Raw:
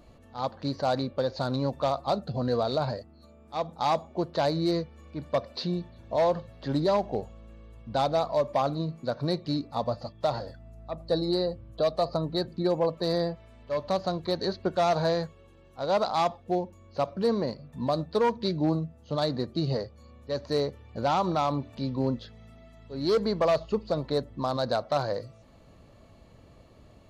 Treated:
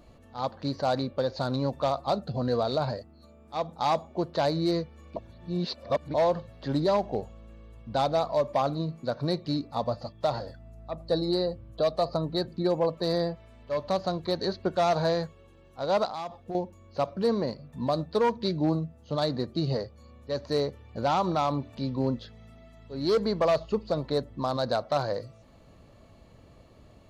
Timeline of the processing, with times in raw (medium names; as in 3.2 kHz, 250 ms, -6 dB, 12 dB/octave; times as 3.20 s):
5.16–6.14 s: reverse
16.05–16.55 s: compression, threshold -32 dBFS